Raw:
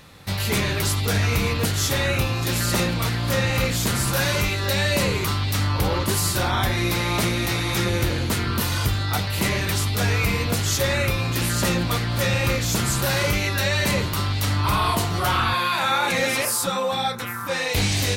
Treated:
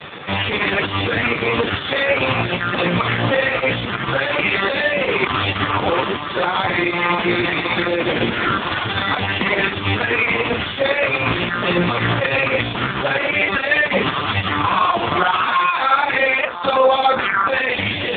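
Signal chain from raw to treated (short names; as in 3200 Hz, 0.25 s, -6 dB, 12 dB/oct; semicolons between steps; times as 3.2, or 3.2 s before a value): HPF 420 Hz 6 dB/oct; in parallel at -2 dB: negative-ratio compressor -28 dBFS, ratio -0.5; on the sum: maximiser +20 dB; gain -2.5 dB; AMR-NB 4.75 kbps 8000 Hz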